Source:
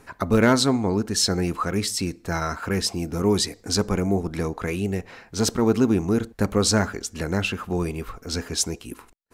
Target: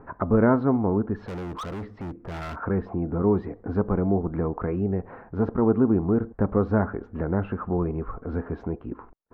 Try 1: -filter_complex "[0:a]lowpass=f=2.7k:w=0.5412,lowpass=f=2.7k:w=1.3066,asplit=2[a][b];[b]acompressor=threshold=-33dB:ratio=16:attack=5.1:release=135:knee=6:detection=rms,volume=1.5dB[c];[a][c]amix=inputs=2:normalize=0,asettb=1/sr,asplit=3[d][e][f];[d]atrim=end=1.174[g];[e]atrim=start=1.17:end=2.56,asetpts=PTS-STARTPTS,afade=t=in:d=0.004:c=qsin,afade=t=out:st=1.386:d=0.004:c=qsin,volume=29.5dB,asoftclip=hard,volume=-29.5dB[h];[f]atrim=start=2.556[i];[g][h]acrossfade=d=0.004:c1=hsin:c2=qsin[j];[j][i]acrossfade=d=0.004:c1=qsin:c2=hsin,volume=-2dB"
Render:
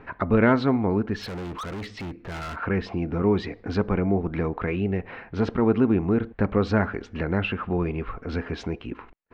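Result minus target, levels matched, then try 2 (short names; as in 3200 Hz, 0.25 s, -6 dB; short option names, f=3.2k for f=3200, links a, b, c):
2000 Hz band +7.5 dB
-filter_complex "[0:a]lowpass=f=1.3k:w=0.5412,lowpass=f=1.3k:w=1.3066,asplit=2[a][b];[b]acompressor=threshold=-33dB:ratio=16:attack=5.1:release=135:knee=6:detection=rms,volume=1.5dB[c];[a][c]amix=inputs=2:normalize=0,asettb=1/sr,asplit=3[d][e][f];[d]atrim=end=1.174[g];[e]atrim=start=1.17:end=2.56,asetpts=PTS-STARTPTS,afade=t=in:d=0.004:c=qsin,afade=t=out:st=1.386:d=0.004:c=qsin,volume=29.5dB,asoftclip=hard,volume=-29.5dB[h];[f]atrim=start=2.556[i];[g][h]acrossfade=d=0.004:c1=hsin:c2=qsin[j];[j][i]acrossfade=d=0.004:c1=qsin:c2=hsin,volume=-2dB"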